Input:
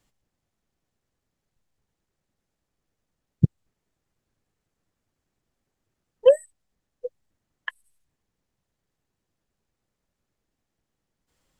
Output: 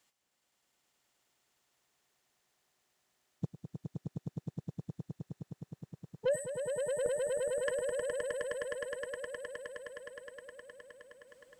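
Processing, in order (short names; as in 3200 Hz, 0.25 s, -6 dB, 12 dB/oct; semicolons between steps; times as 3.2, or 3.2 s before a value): HPF 1000 Hz 6 dB/oct, from 7.06 s 160 Hz; limiter -21.5 dBFS, peak gain reduction 10.5 dB; soft clip -25.5 dBFS, distortion -16 dB; swelling echo 0.104 s, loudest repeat 8, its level -5 dB; gain +1.5 dB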